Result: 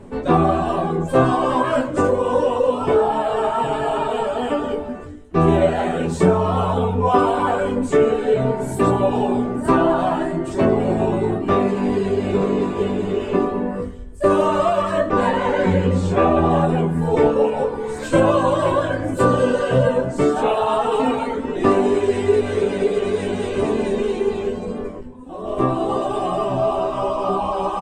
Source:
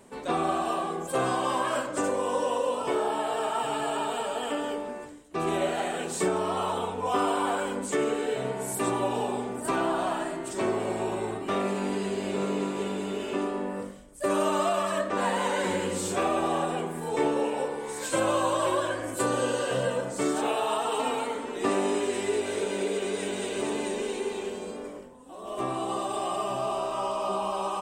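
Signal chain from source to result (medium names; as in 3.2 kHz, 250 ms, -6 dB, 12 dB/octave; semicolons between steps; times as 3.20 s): RIAA curve playback; reverb removal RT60 0.74 s; 15.29–16.51 s: distance through air 58 m; early reflections 12 ms -6 dB, 23 ms -7.5 dB; on a send at -13.5 dB: reverberation RT60 1.3 s, pre-delay 25 ms; on the sum: trim +7.5 dB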